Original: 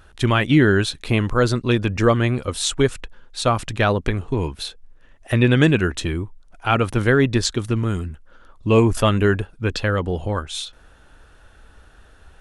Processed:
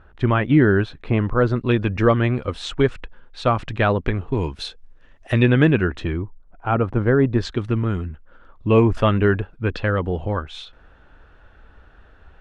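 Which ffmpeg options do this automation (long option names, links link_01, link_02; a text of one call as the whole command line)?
ffmpeg -i in.wav -af "asetnsamples=nb_out_samples=441:pad=0,asendcmd='1.56 lowpass f 2800;4.35 lowpass f 5700;5.46 lowpass f 2300;6.22 lowpass f 1200;7.38 lowpass f 2600',lowpass=1700" out.wav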